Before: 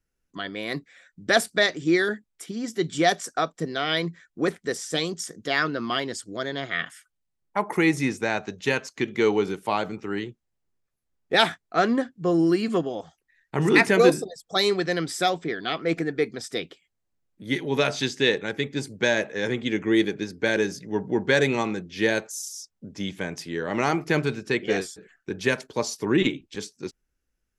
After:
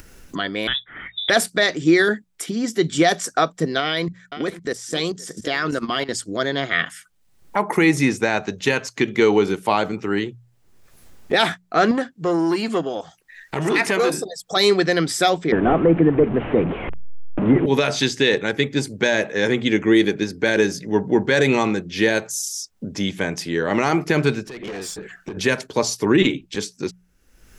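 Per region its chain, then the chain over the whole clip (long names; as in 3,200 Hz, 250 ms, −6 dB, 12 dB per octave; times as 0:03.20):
0:00.67–0:01.30: voice inversion scrambler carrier 3,700 Hz + multiband upward and downward compressor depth 70%
0:03.80–0:06.09: single-tap delay 517 ms −16.5 dB + output level in coarse steps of 15 dB
0:11.91–0:14.57: low-shelf EQ 370 Hz −7.5 dB + downward compressor 3 to 1, threshold −21 dBFS + saturating transformer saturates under 970 Hz
0:15.52–0:17.66: linear delta modulator 16 kbit/s, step −34 dBFS + tilt shelving filter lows +9.5 dB, about 1,200 Hz + multiband upward and downward compressor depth 40%
0:24.44–0:25.37: high-shelf EQ 4,800 Hz −3 dB + downward compressor 20 to 1, threshold −34 dBFS + tube saturation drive 39 dB, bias 0.3
whole clip: mains-hum notches 60/120/180 Hz; brickwall limiter −13.5 dBFS; upward compression, threshold −31 dBFS; level +7.5 dB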